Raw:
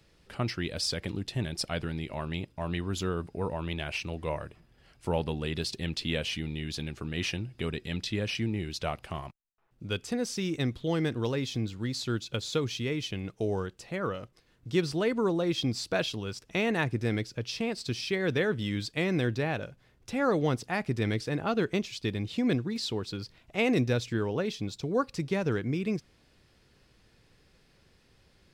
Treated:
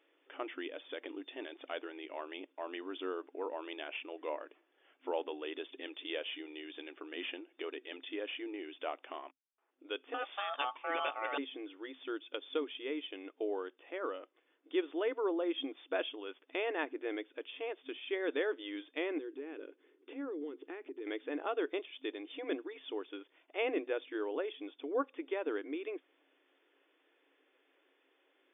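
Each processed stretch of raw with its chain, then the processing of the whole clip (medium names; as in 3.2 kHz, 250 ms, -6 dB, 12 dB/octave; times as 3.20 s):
10.14–11.38 s: high-order bell 1.9 kHz +11 dB 2.7 oct + ring modulator 1 kHz
19.18–21.07 s: resonant low shelf 510 Hz +7.5 dB, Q 3 + compression 10:1, threshold -32 dBFS
whole clip: FFT band-pass 260–3600 Hz; dynamic bell 2.2 kHz, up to -3 dB, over -43 dBFS, Q 1.1; trim -5 dB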